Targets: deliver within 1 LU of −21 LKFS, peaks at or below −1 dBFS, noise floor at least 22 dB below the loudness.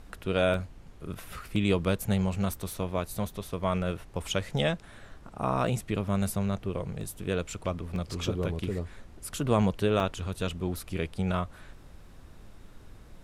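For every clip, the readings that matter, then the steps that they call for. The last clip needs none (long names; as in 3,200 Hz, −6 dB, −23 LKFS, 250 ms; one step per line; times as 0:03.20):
number of dropouts 6; longest dropout 1.5 ms; background noise floor −50 dBFS; target noise floor −53 dBFS; integrated loudness −30.5 LKFS; sample peak −11.5 dBFS; target loudness −21.0 LKFS
→ repair the gap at 0:00.54/0:01.56/0:05.67/0:07.01/0:07.96/0:10.00, 1.5 ms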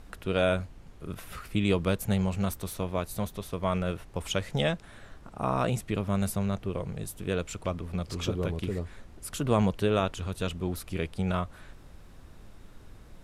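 number of dropouts 0; background noise floor −50 dBFS; target noise floor −53 dBFS
→ noise reduction from a noise print 6 dB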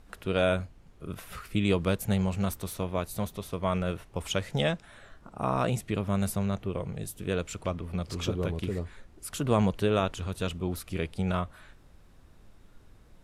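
background noise floor −56 dBFS; integrated loudness −30.5 LKFS; sample peak −11.5 dBFS; target loudness −21.0 LKFS
→ level +9.5 dB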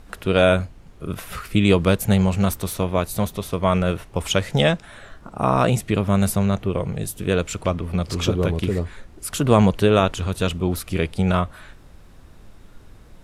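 integrated loudness −21.0 LKFS; sample peak −2.0 dBFS; background noise floor −47 dBFS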